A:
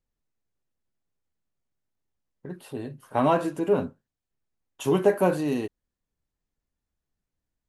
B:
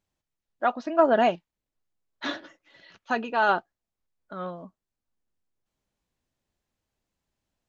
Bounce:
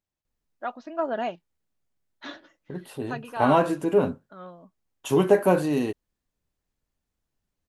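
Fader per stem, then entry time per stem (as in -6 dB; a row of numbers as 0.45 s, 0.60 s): +2.0 dB, -8.0 dB; 0.25 s, 0.00 s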